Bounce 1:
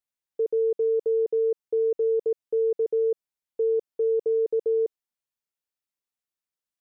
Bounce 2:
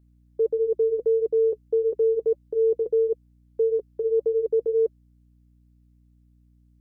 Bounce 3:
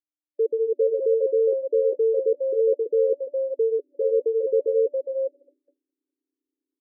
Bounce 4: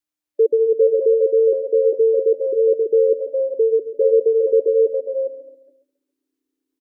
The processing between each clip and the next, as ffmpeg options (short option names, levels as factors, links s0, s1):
-af "flanger=delay=2.9:depth=3:regen=-47:speed=1.6:shape=triangular,aeval=exprs='val(0)+0.000708*(sin(2*PI*60*n/s)+sin(2*PI*2*60*n/s)/2+sin(2*PI*3*60*n/s)/3+sin(2*PI*4*60*n/s)/4+sin(2*PI*5*60*n/s)/5)':c=same,volume=2"
-filter_complex "[0:a]asplit=5[s0][s1][s2][s3][s4];[s1]adelay=411,afreqshift=85,volume=0.596[s5];[s2]adelay=822,afreqshift=170,volume=0.184[s6];[s3]adelay=1233,afreqshift=255,volume=0.0575[s7];[s4]adelay=1644,afreqshift=340,volume=0.0178[s8];[s0][s5][s6][s7][s8]amix=inputs=5:normalize=0,afftfilt=real='re*between(b*sr/4096,250,580)':imag='im*between(b*sr/4096,250,580)':win_size=4096:overlap=0.75,agate=range=0.0224:threshold=0.00178:ratio=3:detection=peak"
-filter_complex "[0:a]adynamicequalizer=threshold=0.0224:dfrequency=500:dqfactor=4.1:tfrequency=500:tqfactor=4.1:attack=5:release=100:ratio=0.375:range=3:mode=cutabove:tftype=bell,asplit=2[s0][s1];[s1]aecho=0:1:136|272|408|544:0.211|0.0803|0.0305|0.0116[s2];[s0][s2]amix=inputs=2:normalize=0,volume=2.37"